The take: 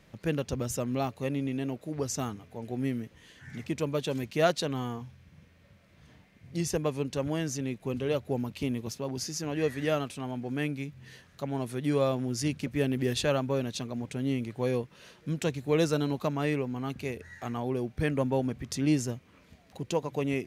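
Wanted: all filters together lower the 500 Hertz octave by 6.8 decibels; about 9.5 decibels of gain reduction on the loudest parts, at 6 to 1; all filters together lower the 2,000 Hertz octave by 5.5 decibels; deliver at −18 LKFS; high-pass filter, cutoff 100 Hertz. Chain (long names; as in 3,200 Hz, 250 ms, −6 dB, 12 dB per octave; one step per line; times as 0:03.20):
high-pass filter 100 Hz
parametric band 500 Hz −8 dB
parametric band 2,000 Hz −7 dB
downward compressor 6 to 1, threshold −33 dBFS
level +21 dB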